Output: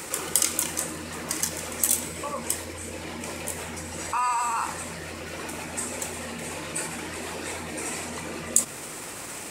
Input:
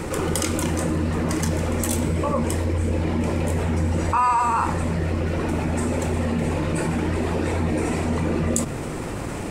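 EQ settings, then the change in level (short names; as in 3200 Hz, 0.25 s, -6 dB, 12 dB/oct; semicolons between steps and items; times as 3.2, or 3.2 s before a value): tilt +4 dB/oct; -6.5 dB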